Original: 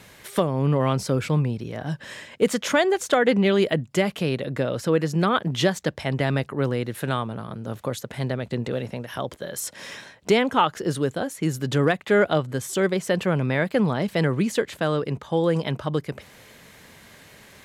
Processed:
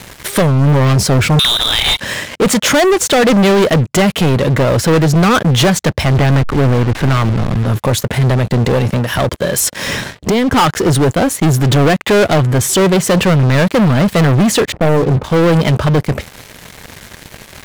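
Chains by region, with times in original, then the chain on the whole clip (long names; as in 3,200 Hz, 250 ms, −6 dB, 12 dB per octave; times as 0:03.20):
0:01.39–0:02.00: voice inversion scrambler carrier 3,800 Hz + every bin compressed towards the loudest bin 2 to 1
0:06.05–0:07.66: hold until the input has moved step −33.5 dBFS + low-pass filter 3,900 Hz
0:09.87–0:10.54: low-shelf EQ 350 Hz +9 dB + downward compressor 5 to 1, threshold −26 dBFS
0:14.72–0:15.24: inverse Chebyshev low-pass filter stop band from 5,200 Hz, stop band 80 dB + hard clipping −19 dBFS + double-tracking delay 31 ms −9.5 dB
whole clip: low-shelf EQ 100 Hz +12 dB; leveller curve on the samples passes 5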